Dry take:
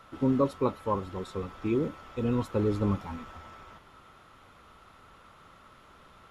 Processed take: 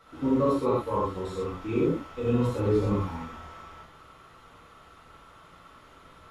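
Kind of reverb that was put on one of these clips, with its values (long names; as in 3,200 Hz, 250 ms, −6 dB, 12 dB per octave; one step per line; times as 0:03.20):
reverb whose tail is shaped and stops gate 150 ms flat, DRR −8 dB
level −6 dB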